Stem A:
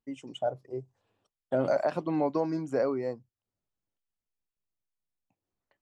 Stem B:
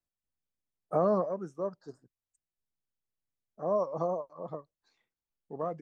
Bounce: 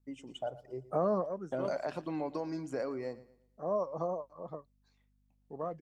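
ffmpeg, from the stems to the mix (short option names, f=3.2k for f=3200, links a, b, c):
-filter_complex "[0:a]acompressor=threshold=-30dB:ratio=2,aeval=exprs='val(0)+0.000501*(sin(2*PI*50*n/s)+sin(2*PI*2*50*n/s)/2+sin(2*PI*3*50*n/s)/3+sin(2*PI*4*50*n/s)/4+sin(2*PI*5*50*n/s)/5)':c=same,adynamicequalizer=threshold=0.00501:dfrequency=1600:dqfactor=0.7:tfrequency=1600:tqfactor=0.7:attack=5:release=100:ratio=0.375:range=3:mode=boostabove:tftype=highshelf,volume=-5dB,asplit=2[a][b];[b]volume=-17.5dB[c];[1:a]volume=-3.5dB[d];[c]aecho=0:1:116|232|348|464|580:1|0.34|0.116|0.0393|0.0134[e];[a][d][e]amix=inputs=3:normalize=0"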